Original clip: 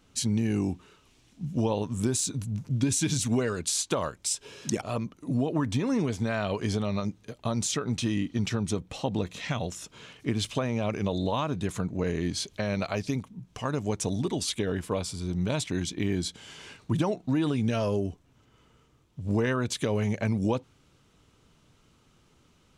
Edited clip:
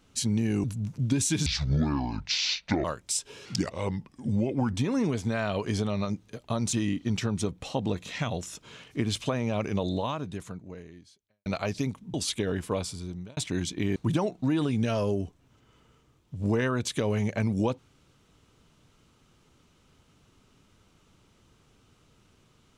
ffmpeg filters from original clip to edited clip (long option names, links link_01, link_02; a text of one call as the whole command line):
ffmpeg -i in.wav -filter_complex "[0:a]asplit=11[link_01][link_02][link_03][link_04][link_05][link_06][link_07][link_08][link_09][link_10][link_11];[link_01]atrim=end=0.642[link_12];[link_02]atrim=start=2.348:end=3.174[link_13];[link_03]atrim=start=3.17:end=4,asetpts=PTS-STARTPTS,asetrate=26460,aresample=44100[link_14];[link_04]atrim=start=3.996:end=4.614[link_15];[link_05]atrim=start=4.61:end=5.69,asetpts=PTS-STARTPTS,asetrate=37044,aresample=44100[link_16];[link_06]atrim=start=5.686:end=7.682[link_17];[link_07]atrim=start=8.018:end=12.75,asetpts=PTS-STARTPTS,afade=type=out:start_time=3.132:duration=1.6:curve=qua[link_18];[link_08]atrim=start=12.75:end=13.432,asetpts=PTS-STARTPTS,afade=type=in:duration=0.004:curve=hsin[link_19];[link_09]atrim=start=14.338:end=15.57,asetpts=PTS-STARTPTS,afade=type=out:start_time=0.692:duration=0.54[link_20];[link_10]atrim=start=15.57:end=16.162,asetpts=PTS-STARTPTS,afade=type=in:duration=0.004:curve=hsin[link_21];[link_11]atrim=start=16.808[link_22];[link_12][link_13]acrossfade=duration=0.004:curve1=hsin:curve2=hsin[link_23];[link_23][link_14]acrossfade=duration=0.004:curve1=hsin:curve2=hsin[link_24];[link_24][link_15]acrossfade=duration=0.004:curve1=hsin:curve2=hsin[link_25];[link_25][link_16]acrossfade=duration=0.004:curve1=hsin:curve2=hsin[link_26];[link_26][link_17]acrossfade=duration=0.004:curve1=hsin:curve2=hsin[link_27];[link_18][link_19]concat=n=2:v=0:a=1[link_28];[link_27][link_28]acrossfade=duration=0.004:curve1=hsin:curve2=hsin[link_29];[link_20][link_21]concat=n=2:v=0:a=1[link_30];[link_29][link_30]acrossfade=duration=0.004:curve1=hsin:curve2=hsin[link_31];[link_31][link_22]acrossfade=duration=0.004:curve1=hsin:curve2=hsin" out.wav